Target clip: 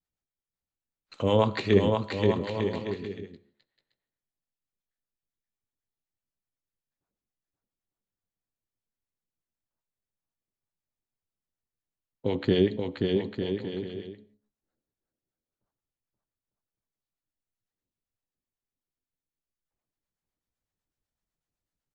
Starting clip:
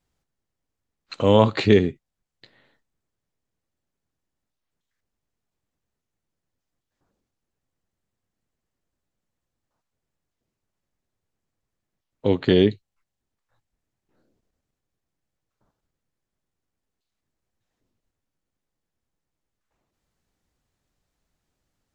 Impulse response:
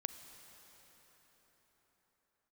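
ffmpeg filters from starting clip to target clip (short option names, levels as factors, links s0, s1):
-filter_complex "[0:a]bandreject=f=70.44:t=h:w=4,bandreject=f=140.88:t=h:w=4,bandreject=f=211.32:t=h:w=4,bandreject=f=281.76:t=h:w=4,bandreject=f=352.2:t=h:w=4,bandreject=f=422.64:t=h:w=4,bandreject=f=493.08:t=h:w=4,bandreject=f=563.52:t=h:w=4,bandreject=f=633.96:t=h:w=4,bandreject=f=704.4:t=h:w=4,bandreject=f=774.84:t=h:w=4,bandreject=f=845.28:t=h:w=4,bandreject=f=915.72:t=h:w=4,bandreject=f=986.16:t=h:w=4,bandreject=f=1056.6:t=h:w=4,bandreject=f=1127.04:t=h:w=4,bandreject=f=1197.48:t=h:w=4,bandreject=f=1267.92:t=h:w=4,bandreject=f=1338.36:t=h:w=4,bandreject=f=1408.8:t=h:w=4,agate=range=0.316:threshold=0.00251:ratio=16:detection=peak,acrossover=split=570[s0][s1];[s0]aeval=exprs='val(0)*(1-0.7/2+0.7/2*cos(2*PI*8*n/s))':c=same[s2];[s1]aeval=exprs='val(0)*(1-0.7/2-0.7/2*cos(2*PI*8*n/s))':c=same[s3];[s2][s3]amix=inputs=2:normalize=0,aecho=1:1:530|901|1161|1342|1470:0.631|0.398|0.251|0.158|0.1,asplit=2[s4][s5];[1:a]atrim=start_sample=2205,afade=t=out:st=0.23:d=0.01,atrim=end_sample=10584[s6];[s5][s6]afir=irnorm=-1:irlink=0,volume=1.06[s7];[s4][s7]amix=inputs=2:normalize=0,volume=0.398"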